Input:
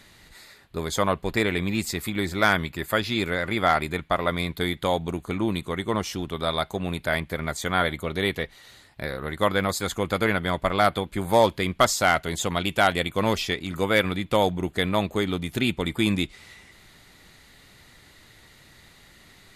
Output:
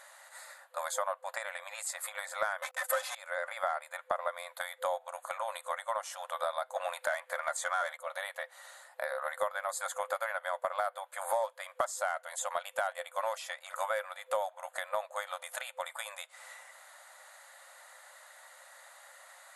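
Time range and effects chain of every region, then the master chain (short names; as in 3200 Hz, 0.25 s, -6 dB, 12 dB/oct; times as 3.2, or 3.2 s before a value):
2.62–3.15 expander -35 dBFS + sample leveller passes 5 + comb 3.9 ms, depth 69%
6.76–7.97 HPF 290 Hz 24 dB/oct + overdrive pedal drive 16 dB, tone 7500 Hz, clips at -7 dBFS
whole clip: FFT band-pass 510–12000 Hz; compressor 6:1, threshold -34 dBFS; band shelf 3500 Hz -11.5 dB; gain +4 dB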